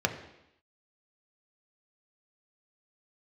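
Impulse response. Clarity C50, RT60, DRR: 10.0 dB, 0.85 s, 4.0 dB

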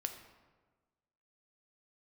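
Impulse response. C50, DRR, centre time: 8.5 dB, 5.5 dB, 19 ms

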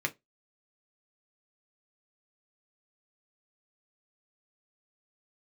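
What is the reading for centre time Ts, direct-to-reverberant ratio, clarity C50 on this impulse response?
5 ms, 3.5 dB, 23.5 dB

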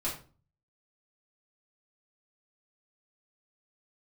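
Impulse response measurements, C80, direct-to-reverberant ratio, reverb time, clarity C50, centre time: 12.5 dB, -8.0 dB, 0.40 s, 7.0 dB, 27 ms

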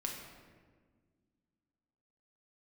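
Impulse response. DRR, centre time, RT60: -0.5 dB, 55 ms, 1.6 s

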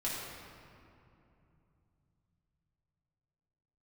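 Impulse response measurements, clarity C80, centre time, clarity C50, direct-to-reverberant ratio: 0.5 dB, 0.123 s, -1.0 dB, -7.5 dB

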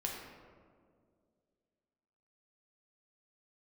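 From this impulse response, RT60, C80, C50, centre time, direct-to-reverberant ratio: 2.1 s, 3.5 dB, 2.0 dB, 71 ms, -2.0 dB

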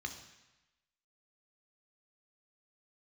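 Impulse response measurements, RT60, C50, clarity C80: 1.0 s, 8.5 dB, 11.0 dB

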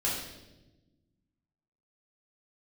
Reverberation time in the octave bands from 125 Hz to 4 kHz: 2.0, 1.9, 1.3, 0.80, 0.85, 0.95 s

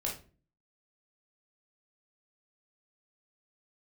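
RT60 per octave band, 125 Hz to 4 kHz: 0.60, 0.60, 0.45, 0.35, 0.30, 0.25 s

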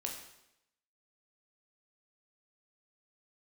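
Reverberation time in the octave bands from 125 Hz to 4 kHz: 0.80, 0.85, 0.85, 0.85, 0.85, 0.80 s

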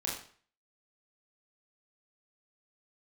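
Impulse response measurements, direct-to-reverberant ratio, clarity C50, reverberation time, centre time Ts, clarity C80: -4.0 dB, 4.0 dB, 0.45 s, 40 ms, 8.5 dB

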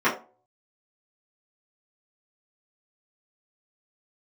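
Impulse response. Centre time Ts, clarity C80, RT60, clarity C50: 23 ms, 15.0 dB, 0.40 s, 10.0 dB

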